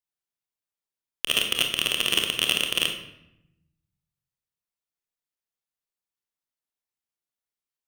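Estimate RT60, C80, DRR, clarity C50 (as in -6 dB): 0.85 s, 9.5 dB, 3.0 dB, 6.0 dB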